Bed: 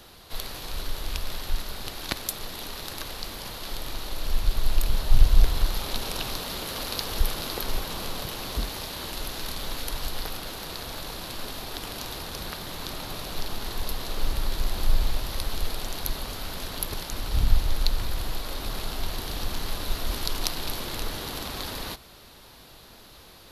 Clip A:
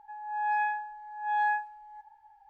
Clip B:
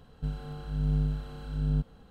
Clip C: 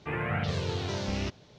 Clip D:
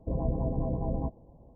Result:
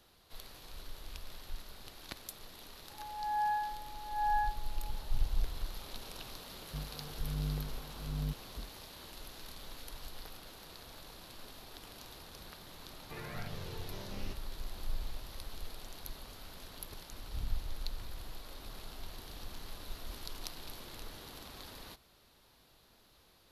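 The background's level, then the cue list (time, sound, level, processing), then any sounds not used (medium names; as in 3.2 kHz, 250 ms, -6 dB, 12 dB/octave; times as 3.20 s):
bed -15.5 dB
2.90 s: add A -3.5 dB + low-pass 1.4 kHz 24 dB/octave
6.51 s: add B -9 dB
13.04 s: add C -14 dB
not used: D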